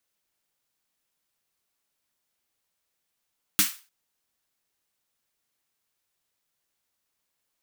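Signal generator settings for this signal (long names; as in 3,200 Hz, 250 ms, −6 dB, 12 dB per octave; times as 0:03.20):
synth snare length 0.30 s, tones 200 Hz, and 300 Hz, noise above 1,200 Hz, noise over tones 10.5 dB, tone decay 0.15 s, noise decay 0.33 s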